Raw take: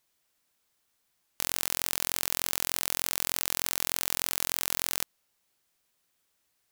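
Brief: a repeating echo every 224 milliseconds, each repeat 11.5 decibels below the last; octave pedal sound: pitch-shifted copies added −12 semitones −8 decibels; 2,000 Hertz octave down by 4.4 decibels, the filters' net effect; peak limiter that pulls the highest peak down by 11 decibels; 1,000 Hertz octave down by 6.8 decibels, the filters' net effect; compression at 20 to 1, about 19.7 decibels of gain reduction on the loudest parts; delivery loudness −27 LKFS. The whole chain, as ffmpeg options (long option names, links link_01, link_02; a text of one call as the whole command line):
ffmpeg -i in.wav -filter_complex "[0:a]equalizer=frequency=1000:width_type=o:gain=-8,equalizer=frequency=2000:width_type=o:gain=-3.5,acompressor=threshold=-41dB:ratio=20,alimiter=level_in=4dB:limit=-24dB:level=0:latency=1,volume=-4dB,aecho=1:1:224|448|672:0.266|0.0718|0.0194,asplit=2[link_01][link_02];[link_02]asetrate=22050,aresample=44100,atempo=2,volume=-8dB[link_03];[link_01][link_03]amix=inputs=2:normalize=0,volume=27dB" out.wav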